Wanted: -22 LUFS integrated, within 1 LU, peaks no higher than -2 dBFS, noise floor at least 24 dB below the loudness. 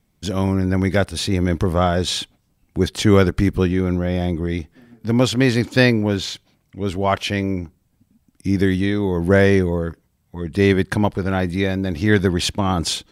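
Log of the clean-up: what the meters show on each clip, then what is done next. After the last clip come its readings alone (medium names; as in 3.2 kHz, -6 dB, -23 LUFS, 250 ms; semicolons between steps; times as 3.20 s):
loudness -19.5 LUFS; peak level -1.0 dBFS; loudness target -22.0 LUFS
-> trim -2.5 dB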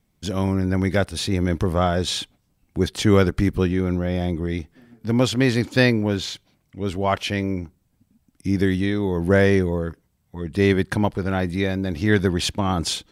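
loudness -22.0 LUFS; peak level -3.5 dBFS; noise floor -67 dBFS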